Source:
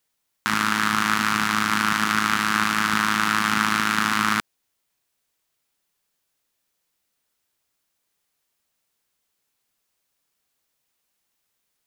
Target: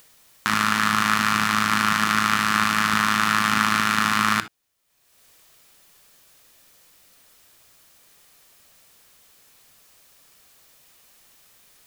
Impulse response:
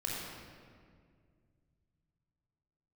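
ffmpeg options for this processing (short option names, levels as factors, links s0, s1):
-filter_complex "[0:a]acompressor=mode=upward:threshold=0.0112:ratio=2.5,asplit=2[s0][s1];[1:a]atrim=start_sample=2205,atrim=end_sample=3528[s2];[s1][s2]afir=irnorm=-1:irlink=0,volume=0.355[s3];[s0][s3]amix=inputs=2:normalize=0,volume=0.891"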